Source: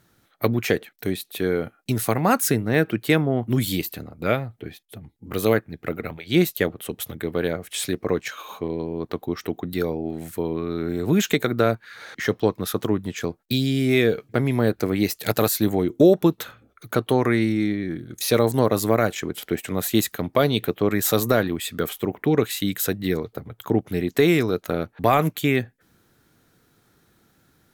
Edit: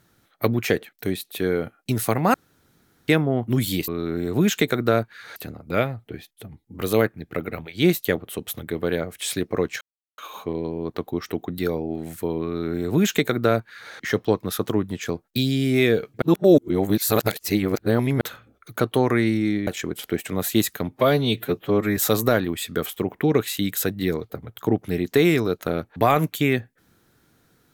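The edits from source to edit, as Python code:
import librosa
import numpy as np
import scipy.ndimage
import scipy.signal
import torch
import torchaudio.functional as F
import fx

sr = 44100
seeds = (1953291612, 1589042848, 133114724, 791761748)

y = fx.edit(x, sr, fx.room_tone_fill(start_s=2.34, length_s=0.74),
    fx.insert_silence(at_s=8.33, length_s=0.37),
    fx.duplicate(start_s=10.6, length_s=1.48, to_s=3.88),
    fx.reverse_span(start_s=14.37, length_s=1.99),
    fx.cut(start_s=17.82, length_s=1.24),
    fx.stretch_span(start_s=20.28, length_s=0.72, factor=1.5), tone=tone)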